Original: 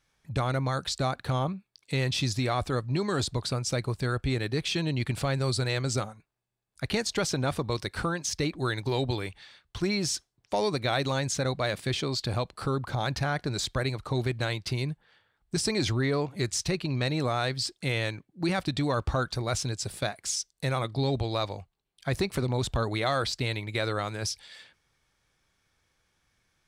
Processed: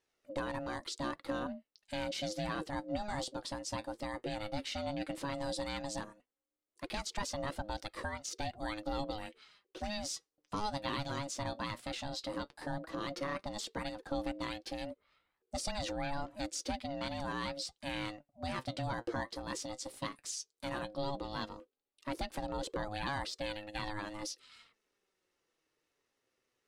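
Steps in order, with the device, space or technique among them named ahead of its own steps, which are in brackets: alien voice (ring modulator 420 Hz; flange 0.13 Hz, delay 1.1 ms, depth 7.8 ms, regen +57%); trim -3 dB

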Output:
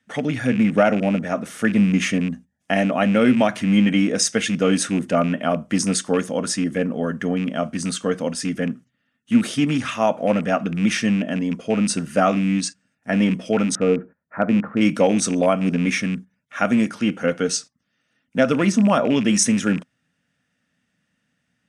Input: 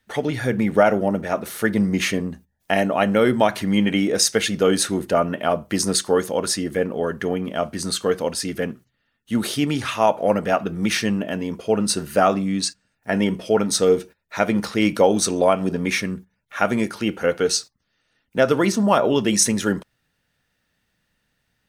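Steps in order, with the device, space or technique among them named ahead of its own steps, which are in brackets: 13.75–14.81 s: inverse Chebyshev low-pass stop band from 4.1 kHz, stop band 50 dB; car door speaker with a rattle (rattle on loud lows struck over -26 dBFS, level -21 dBFS; cabinet simulation 110–9200 Hz, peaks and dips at 170 Hz +5 dB, 250 Hz +8 dB, 390 Hz -8 dB, 910 Hz -6 dB, 4.2 kHz -9 dB)

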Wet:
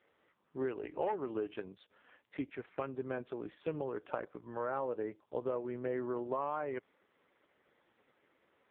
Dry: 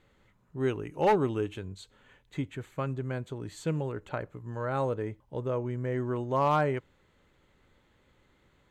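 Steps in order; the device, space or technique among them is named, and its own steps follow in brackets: voicemail (band-pass 320–2800 Hz; compression 12:1, threshold -33 dBFS, peak gain reduction 14 dB; trim +2 dB; AMR-NB 4.75 kbps 8 kHz)

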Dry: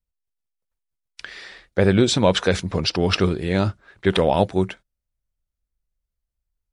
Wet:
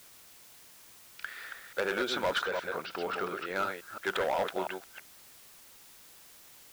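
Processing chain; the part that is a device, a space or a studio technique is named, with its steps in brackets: chunks repeated in reverse 173 ms, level -6.5 dB; drive-through speaker (band-pass 530–3400 Hz; peaking EQ 1.4 kHz +11 dB 0.4 oct; hard clipper -16.5 dBFS, distortion -11 dB; white noise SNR 19 dB); 2.45–3.56 s: de-esser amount 85%; trim -7.5 dB

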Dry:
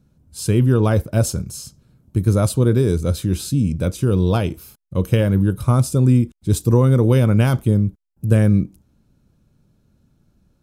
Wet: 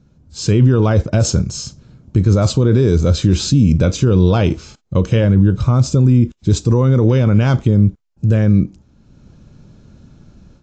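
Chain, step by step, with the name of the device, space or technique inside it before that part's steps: 5.24–6.34 s: bass shelf 290 Hz +3.5 dB; low-bitrate web radio (level rider gain up to 10 dB; peak limiter -10 dBFS, peak gain reduction 9 dB; trim +6 dB; AAC 48 kbps 16 kHz)

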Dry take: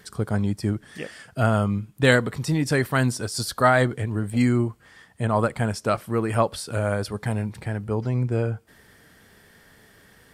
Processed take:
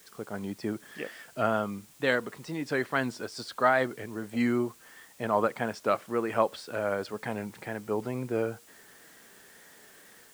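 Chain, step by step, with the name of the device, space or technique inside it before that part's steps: dictaphone (band-pass 270–3500 Hz; level rider gain up to 7.5 dB; wow and flutter; white noise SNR 27 dB); peaking EQ 8.1 kHz +4.5 dB 0.84 oct; trim -9 dB

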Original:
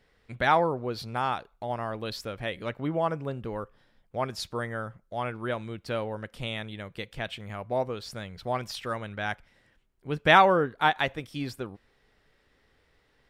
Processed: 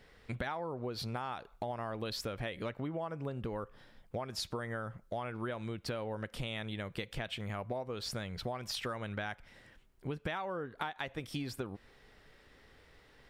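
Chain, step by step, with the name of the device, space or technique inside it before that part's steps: serial compression, peaks first (compression 10:1, threshold -33 dBFS, peak gain reduction 20 dB; compression 2.5:1, threshold -43 dBFS, peak gain reduction 9 dB); trim +5.5 dB

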